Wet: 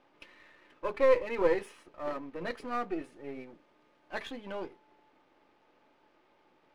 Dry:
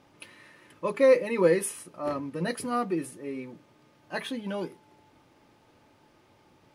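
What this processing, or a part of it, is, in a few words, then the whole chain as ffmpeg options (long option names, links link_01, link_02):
crystal radio: -filter_complex "[0:a]asettb=1/sr,asplit=3[link_01][link_02][link_03];[link_01]atrim=end=3.164[link_04];[link_02]atrim=start=3.16:end=4.45,asetpts=PTS-STARTPTS,afade=type=in:duration=0.004:curve=qsin,afade=type=out:start_time=1.286:duration=0.004:curve=qsin,equalizer=frequency=10000:width_type=o:width=0.77:gain=7.5[link_05];[link_03]atrim=start=4.446[link_06];[link_04][link_05]acrossfade=duration=0.004:curve1=hsin:curve2=qsin[link_07];[link_07][link_06]acrossfade=duration=0.004:curve1=qsin:curve2=hsin,highpass=300,lowpass=3300,aeval=exprs='if(lt(val(0),0),0.447*val(0),val(0))':channel_layout=same,volume=-1.5dB"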